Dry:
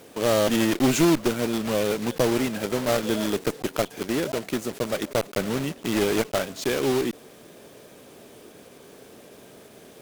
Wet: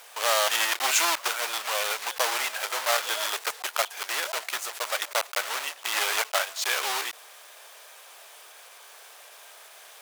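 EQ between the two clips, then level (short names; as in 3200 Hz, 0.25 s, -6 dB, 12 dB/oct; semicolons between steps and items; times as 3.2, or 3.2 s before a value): HPF 810 Hz 24 dB/oct; +5.0 dB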